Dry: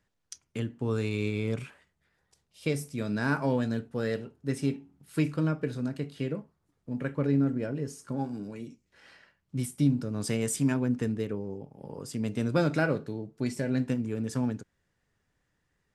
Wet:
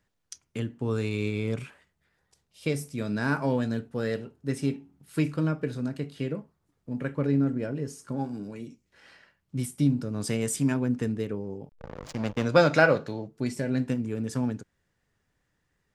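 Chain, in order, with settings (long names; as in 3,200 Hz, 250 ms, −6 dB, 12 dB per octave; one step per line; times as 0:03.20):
0:11.69–0:12.45: slack as between gear wheels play −32 dBFS
0:11.77–0:13.28: gain on a spectral selection 470–7,400 Hz +8 dB
level +1 dB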